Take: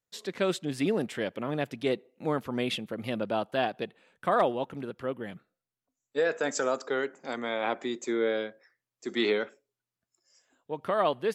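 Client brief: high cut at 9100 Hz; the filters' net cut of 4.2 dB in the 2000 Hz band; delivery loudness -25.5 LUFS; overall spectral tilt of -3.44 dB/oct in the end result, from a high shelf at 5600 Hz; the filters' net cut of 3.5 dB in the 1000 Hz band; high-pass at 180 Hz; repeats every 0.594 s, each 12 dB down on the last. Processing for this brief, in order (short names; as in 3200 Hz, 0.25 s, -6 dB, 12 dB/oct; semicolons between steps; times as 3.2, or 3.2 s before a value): HPF 180 Hz; LPF 9100 Hz; bell 1000 Hz -4 dB; bell 2000 Hz -3.5 dB; high shelf 5600 Hz -4.5 dB; feedback echo 0.594 s, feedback 25%, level -12 dB; gain +7 dB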